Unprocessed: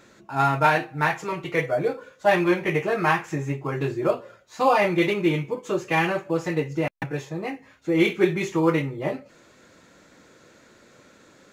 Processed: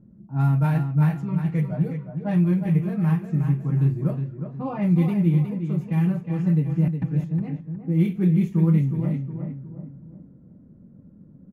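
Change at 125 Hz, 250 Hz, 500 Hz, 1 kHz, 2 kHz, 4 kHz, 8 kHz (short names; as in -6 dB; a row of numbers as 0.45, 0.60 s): +11.0 dB, +4.0 dB, -11.5 dB, -14.0 dB, -16.5 dB, under -15 dB, under -15 dB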